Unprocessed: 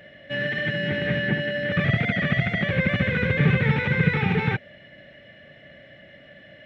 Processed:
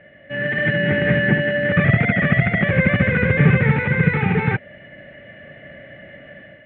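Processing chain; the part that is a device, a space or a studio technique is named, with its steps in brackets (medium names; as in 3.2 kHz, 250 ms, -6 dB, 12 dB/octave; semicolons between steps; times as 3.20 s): action camera in a waterproof case (low-pass 2.5 kHz 24 dB/octave; level rider gain up to 8 dB; AAC 64 kbps 48 kHz)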